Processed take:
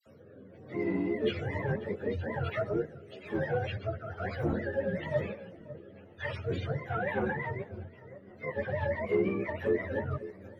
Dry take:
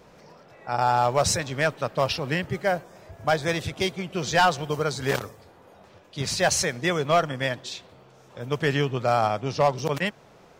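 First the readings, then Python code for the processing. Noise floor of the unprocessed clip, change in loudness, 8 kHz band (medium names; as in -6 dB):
-53 dBFS, -8.5 dB, under -35 dB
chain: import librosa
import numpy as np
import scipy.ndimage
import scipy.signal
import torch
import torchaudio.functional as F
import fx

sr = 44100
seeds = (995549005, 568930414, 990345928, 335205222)

p1 = fx.octave_mirror(x, sr, pivot_hz=500.0)
p2 = 10.0 ** (-16.5 / 20.0) * np.tanh(p1 / 10.0 ** (-16.5 / 20.0))
p3 = p2 + fx.echo_feedback(p2, sr, ms=542, feedback_pct=39, wet_db=-21.5, dry=0)
p4 = fx.spec_box(p3, sr, start_s=6.85, length_s=0.58, low_hz=690.0, high_hz=4000.0, gain_db=8)
p5 = fx.over_compress(p4, sr, threshold_db=-33.0, ratio=-1.0)
p6 = p4 + (p5 * librosa.db_to_amplitude(-3.0))
p7 = fx.peak_eq(p6, sr, hz=580.0, db=7.5, octaves=0.77)
p8 = fx.rotary_switch(p7, sr, hz=1.1, then_hz=6.0, switch_at_s=6.21)
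p9 = fx.dynamic_eq(p8, sr, hz=3500.0, q=1.0, threshold_db=-50.0, ratio=4.0, max_db=6)
p10 = fx.wow_flutter(p9, sr, seeds[0], rate_hz=2.1, depth_cents=18.0)
p11 = fx.dispersion(p10, sr, late='lows', ms=64.0, hz=1700.0)
p12 = fx.ensemble(p11, sr)
y = p12 * librosa.db_to_amplitude(-5.0)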